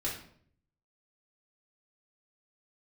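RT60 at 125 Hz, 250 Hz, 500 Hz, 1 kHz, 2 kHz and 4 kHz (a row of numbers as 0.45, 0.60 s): 0.95, 0.75, 0.65, 0.55, 0.50, 0.45 s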